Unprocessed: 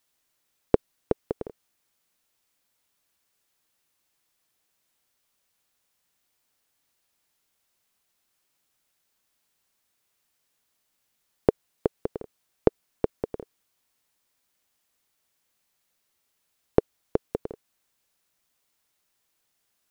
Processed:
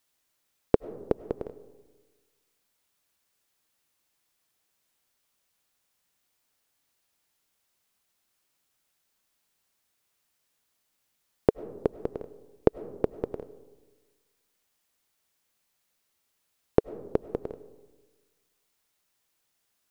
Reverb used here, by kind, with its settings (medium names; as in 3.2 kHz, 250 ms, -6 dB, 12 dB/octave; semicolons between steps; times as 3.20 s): algorithmic reverb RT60 1.3 s, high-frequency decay 0.3×, pre-delay 60 ms, DRR 16.5 dB; trim -1 dB